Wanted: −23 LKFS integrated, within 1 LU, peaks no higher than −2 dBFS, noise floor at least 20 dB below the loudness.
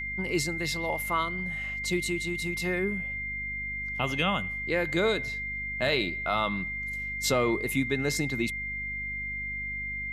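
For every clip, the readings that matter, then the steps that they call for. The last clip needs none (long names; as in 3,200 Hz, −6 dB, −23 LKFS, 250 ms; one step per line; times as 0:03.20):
mains hum 50 Hz; hum harmonics up to 250 Hz; level of the hum −40 dBFS; interfering tone 2,100 Hz; level of the tone −32 dBFS; integrated loudness −29.0 LKFS; sample peak −12.0 dBFS; target loudness −23.0 LKFS
→ hum removal 50 Hz, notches 5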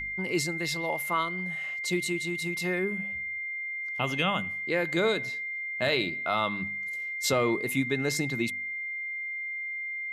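mains hum none found; interfering tone 2,100 Hz; level of the tone −32 dBFS
→ notch filter 2,100 Hz, Q 30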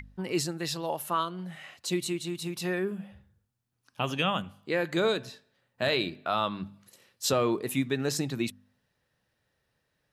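interfering tone none found; integrated loudness −30.5 LKFS; sample peak −13.5 dBFS; target loudness −23.0 LKFS
→ level +7.5 dB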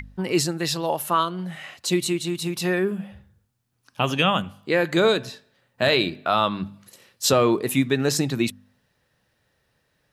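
integrated loudness −23.0 LKFS; sample peak −6.0 dBFS; background noise floor −71 dBFS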